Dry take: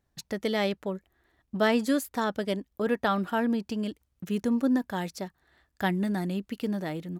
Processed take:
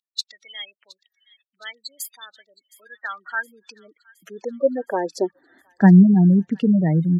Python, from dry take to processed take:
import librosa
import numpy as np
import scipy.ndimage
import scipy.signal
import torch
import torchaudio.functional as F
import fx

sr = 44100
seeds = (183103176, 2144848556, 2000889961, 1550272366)

p1 = fx.spec_gate(x, sr, threshold_db=-15, keep='strong')
p2 = fx.filter_sweep_highpass(p1, sr, from_hz=3800.0, to_hz=160.0, start_s=2.63, end_s=6.1, q=5.4)
p3 = p2 + fx.echo_wet_highpass(p2, sr, ms=717, feedback_pct=59, hz=2200.0, wet_db=-20, dry=0)
y = p3 * librosa.db_to_amplitude(6.5)